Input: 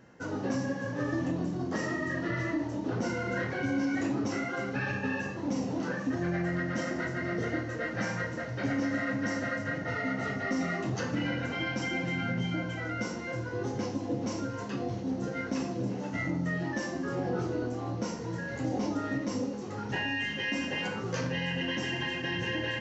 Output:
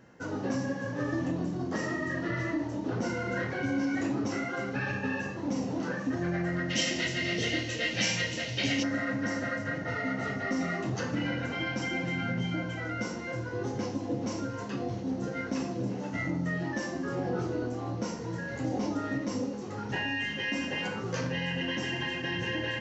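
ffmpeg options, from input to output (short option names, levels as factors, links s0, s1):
-filter_complex "[0:a]asplit=3[s0][s1][s2];[s0]afade=t=out:st=6.69:d=0.02[s3];[s1]highshelf=f=2000:t=q:w=3:g=12.5,afade=t=in:st=6.69:d=0.02,afade=t=out:st=8.82:d=0.02[s4];[s2]afade=t=in:st=8.82:d=0.02[s5];[s3][s4][s5]amix=inputs=3:normalize=0"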